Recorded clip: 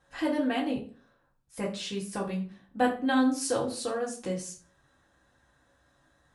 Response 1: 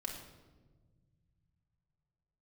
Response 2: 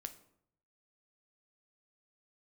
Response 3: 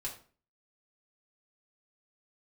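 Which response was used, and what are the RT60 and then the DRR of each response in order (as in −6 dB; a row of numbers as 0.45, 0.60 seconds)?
3; 1.4, 0.70, 0.40 seconds; −1.0, 8.0, −3.5 decibels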